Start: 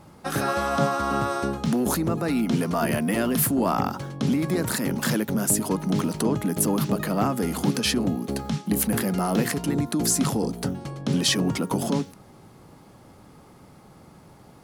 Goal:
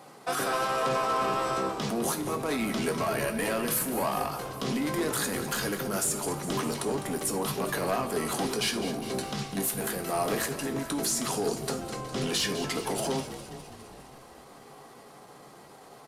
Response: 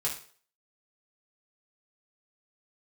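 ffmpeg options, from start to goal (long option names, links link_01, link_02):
-filter_complex "[0:a]highpass=390,alimiter=limit=-18dB:level=0:latency=1:release=482,asetrate=41625,aresample=44100,atempo=1.05946,asoftclip=type=tanh:threshold=-27dB,atempo=0.91,asplit=9[link_01][link_02][link_03][link_04][link_05][link_06][link_07][link_08][link_09];[link_02]adelay=204,afreqshift=-54,volume=-12dB[link_10];[link_03]adelay=408,afreqshift=-108,volume=-15.9dB[link_11];[link_04]adelay=612,afreqshift=-162,volume=-19.8dB[link_12];[link_05]adelay=816,afreqshift=-216,volume=-23.6dB[link_13];[link_06]adelay=1020,afreqshift=-270,volume=-27.5dB[link_14];[link_07]adelay=1224,afreqshift=-324,volume=-31.4dB[link_15];[link_08]adelay=1428,afreqshift=-378,volume=-35.3dB[link_16];[link_09]adelay=1632,afreqshift=-432,volume=-39.1dB[link_17];[link_01][link_10][link_11][link_12][link_13][link_14][link_15][link_16][link_17]amix=inputs=9:normalize=0,asplit=2[link_18][link_19];[1:a]atrim=start_sample=2205,asetrate=43659,aresample=44100[link_20];[link_19][link_20]afir=irnorm=-1:irlink=0,volume=-6dB[link_21];[link_18][link_21]amix=inputs=2:normalize=0,aresample=32000,aresample=44100"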